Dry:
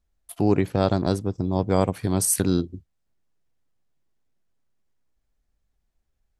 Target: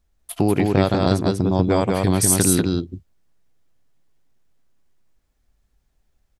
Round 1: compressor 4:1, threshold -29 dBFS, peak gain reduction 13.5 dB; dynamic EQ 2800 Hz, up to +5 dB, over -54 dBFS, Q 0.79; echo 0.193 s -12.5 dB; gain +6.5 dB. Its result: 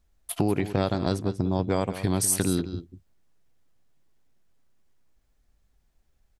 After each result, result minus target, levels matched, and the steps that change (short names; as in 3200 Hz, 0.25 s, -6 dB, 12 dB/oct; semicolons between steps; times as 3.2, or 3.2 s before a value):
echo-to-direct -10 dB; compressor: peak gain reduction +6 dB
change: echo 0.193 s -2.5 dB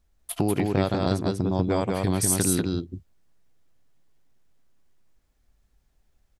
compressor: peak gain reduction +6 dB
change: compressor 4:1, threshold -21 dBFS, peak gain reduction 7.5 dB